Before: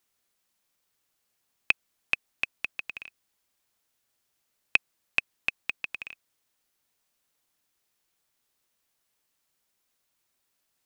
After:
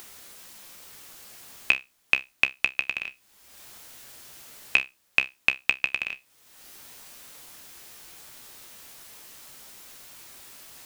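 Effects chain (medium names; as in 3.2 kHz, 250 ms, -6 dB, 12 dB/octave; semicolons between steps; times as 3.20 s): feedback comb 66 Hz, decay 0.19 s, harmonics all, mix 70%; upward compressor, threshold -43 dBFS; loudness maximiser +15 dB; trim -1.5 dB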